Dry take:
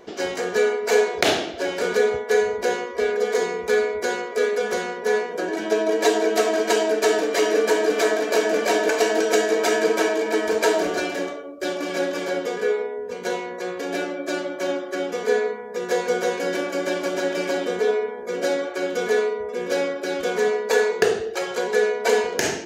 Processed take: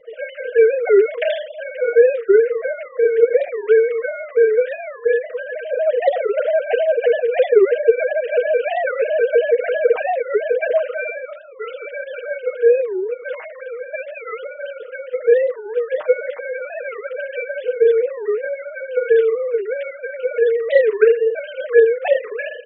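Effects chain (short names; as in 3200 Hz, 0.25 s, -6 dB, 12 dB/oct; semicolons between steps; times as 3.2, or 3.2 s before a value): sine-wave speech; comb 6.4 ms, depth 75%; record warp 45 rpm, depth 250 cents; gain +1 dB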